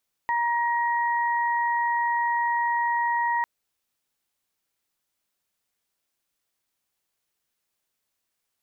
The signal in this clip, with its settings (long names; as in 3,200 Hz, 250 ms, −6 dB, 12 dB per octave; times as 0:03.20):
steady harmonic partials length 3.15 s, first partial 945 Hz, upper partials −5 dB, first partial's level −22.5 dB